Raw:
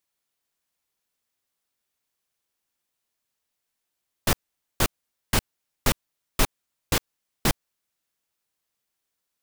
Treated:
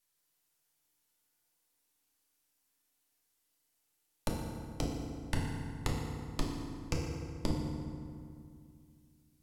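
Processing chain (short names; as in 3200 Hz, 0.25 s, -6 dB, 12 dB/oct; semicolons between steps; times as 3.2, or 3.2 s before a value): half-wave gain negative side -12 dB; high shelf 6100 Hz +8.5 dB; compressor, threshold -24 dBFS, peak gain reduction 9.5 dB; treble ducked by the level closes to 400 Hz, closed at -31 dBFS; FDN reverb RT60 2.3 s, low-frequency decay 1.35×, high-frequency decay 0.6×, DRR -2 dB; gain -1 dB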